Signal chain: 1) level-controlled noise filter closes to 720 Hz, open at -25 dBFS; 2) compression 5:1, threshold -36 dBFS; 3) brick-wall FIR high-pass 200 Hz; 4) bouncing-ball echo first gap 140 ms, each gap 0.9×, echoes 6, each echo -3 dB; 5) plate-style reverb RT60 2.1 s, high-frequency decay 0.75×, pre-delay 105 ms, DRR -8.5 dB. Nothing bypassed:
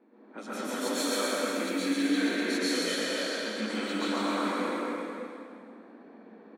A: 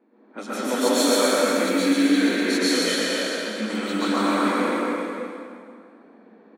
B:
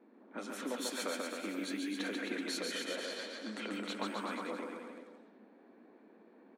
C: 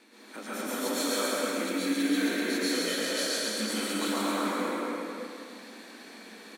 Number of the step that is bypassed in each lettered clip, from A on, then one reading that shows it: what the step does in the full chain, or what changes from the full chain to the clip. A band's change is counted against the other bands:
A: 2, momentary loudness spread change -2 LU; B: 5, echo-to-direct 11.5 dB to 0.0 dB; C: 1, 8 kHz band +3.5 dB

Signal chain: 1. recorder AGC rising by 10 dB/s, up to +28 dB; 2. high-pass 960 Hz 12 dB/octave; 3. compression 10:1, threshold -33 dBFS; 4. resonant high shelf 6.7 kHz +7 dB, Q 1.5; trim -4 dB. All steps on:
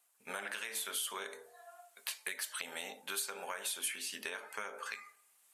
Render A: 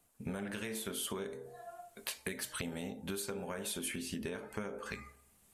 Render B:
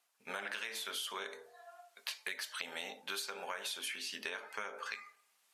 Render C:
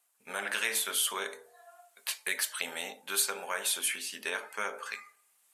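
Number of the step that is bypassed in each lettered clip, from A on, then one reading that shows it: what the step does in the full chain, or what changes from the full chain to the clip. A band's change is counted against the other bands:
2, 250 Hz band +19.5 dB; 4, momentary loudness spread change -3 LU; 3, mean gain reduction 5.0 dB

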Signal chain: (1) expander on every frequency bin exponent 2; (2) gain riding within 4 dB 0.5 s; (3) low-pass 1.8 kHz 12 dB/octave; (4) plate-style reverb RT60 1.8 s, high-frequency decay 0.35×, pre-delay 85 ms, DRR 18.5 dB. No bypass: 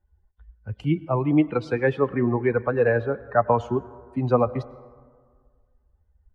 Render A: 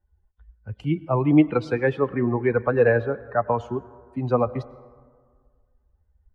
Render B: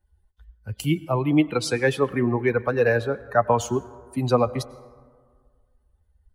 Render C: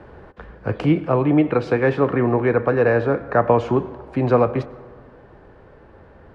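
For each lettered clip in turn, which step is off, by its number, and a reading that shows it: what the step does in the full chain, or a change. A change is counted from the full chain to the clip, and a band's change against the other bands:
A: 2, 1 kHz band -2.0 dB; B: 3, 2 kHz band +3.0 dB; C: 1, loudness change +4.5 LU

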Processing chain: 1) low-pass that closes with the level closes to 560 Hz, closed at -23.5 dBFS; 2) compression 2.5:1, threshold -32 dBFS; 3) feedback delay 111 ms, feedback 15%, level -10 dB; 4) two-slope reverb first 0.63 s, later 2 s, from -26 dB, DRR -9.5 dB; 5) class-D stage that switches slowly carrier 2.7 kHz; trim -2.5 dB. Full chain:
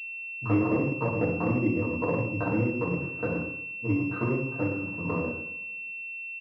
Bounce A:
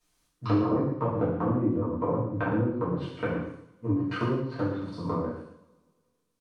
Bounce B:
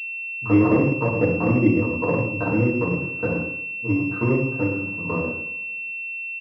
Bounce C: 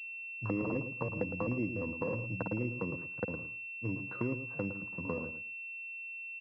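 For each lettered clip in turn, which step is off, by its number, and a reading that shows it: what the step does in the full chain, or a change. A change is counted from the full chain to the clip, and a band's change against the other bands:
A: 5, 2 kHz band -9.0 dB; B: 2, mean gain reduction 4.5 dB; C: 4, 2 kHz band +3.5 dB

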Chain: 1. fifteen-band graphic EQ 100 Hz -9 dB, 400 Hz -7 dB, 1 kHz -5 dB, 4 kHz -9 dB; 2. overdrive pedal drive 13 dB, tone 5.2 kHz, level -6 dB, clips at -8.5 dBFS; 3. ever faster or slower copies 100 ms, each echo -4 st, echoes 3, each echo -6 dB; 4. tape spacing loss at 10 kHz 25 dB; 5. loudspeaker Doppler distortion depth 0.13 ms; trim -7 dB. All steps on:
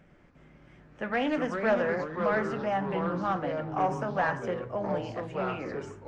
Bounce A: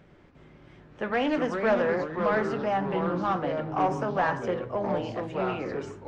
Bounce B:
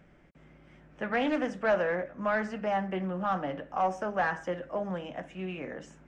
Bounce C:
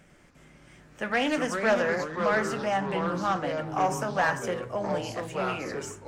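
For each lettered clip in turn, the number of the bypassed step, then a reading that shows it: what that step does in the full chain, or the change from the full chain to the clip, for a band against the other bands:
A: 1, 2 kHz band -1.5 dB; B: 3, loudness change -1.5 LU; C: 4, 4 kHz band +6.5 dB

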